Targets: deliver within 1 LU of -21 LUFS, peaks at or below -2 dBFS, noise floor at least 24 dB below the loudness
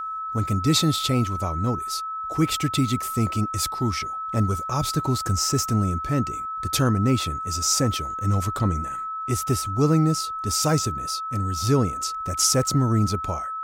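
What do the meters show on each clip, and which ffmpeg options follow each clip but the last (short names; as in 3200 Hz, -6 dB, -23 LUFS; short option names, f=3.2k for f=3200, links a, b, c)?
steady tone 1300 Hz; tone level -28 dBFS; loudness -23.5 LUFS; peak -8.0 dBFS; loudness target -21.0 LUFS
-> -af "bandreject=f=1.3k:w=30"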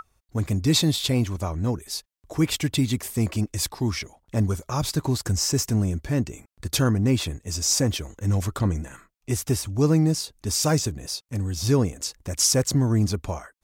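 steady tone none; loudness -24.5 LUFS; peak -9.0 dBFS; loudness target -21.0 LUFS
-> -af "volume=3.5dB"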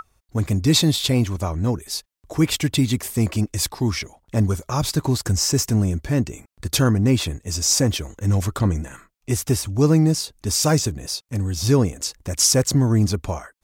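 loudness -21.0 LUFS; peak -5.5 dBFS; noise floor -67 dBFS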